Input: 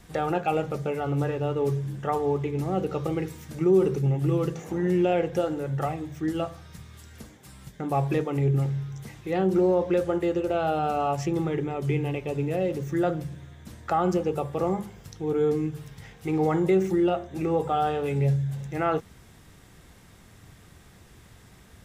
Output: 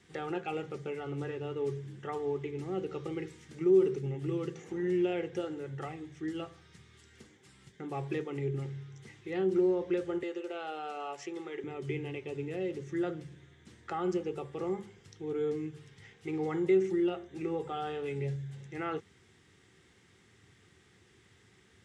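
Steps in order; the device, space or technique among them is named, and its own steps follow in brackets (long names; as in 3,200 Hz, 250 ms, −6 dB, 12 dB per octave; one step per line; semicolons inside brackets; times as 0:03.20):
car door speaker (loudspeaker in its box 82–8,700 Hz, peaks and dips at 100 Hz +5 dB, 380 Hz +8 dB, 630 Hz −10 dB, 1,000 Hz −4 dB, 2,000 Hz +5 dB, 3,100 Hz +4 dB)
low-shelf EQ 220 Hz −5.5 dB
0:10.23–0:11.64: high-pass filter 440 Hz 12 dB per octave
level −9 dB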